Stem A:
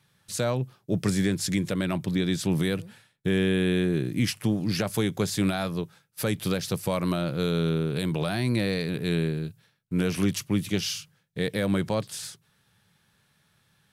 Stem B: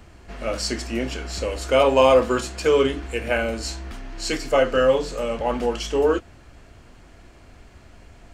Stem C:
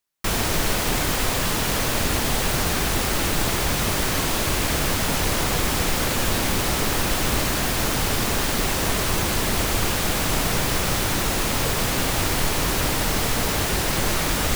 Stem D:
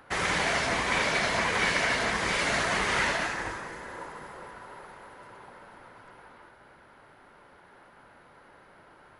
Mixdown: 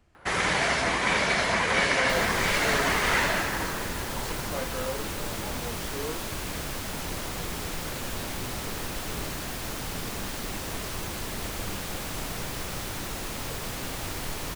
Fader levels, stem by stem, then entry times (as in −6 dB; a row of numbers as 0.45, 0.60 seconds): −20.0, −17.0, −11.5, +2.0 decibels; 0.00, 0.00, 1.85, 0.15 seconds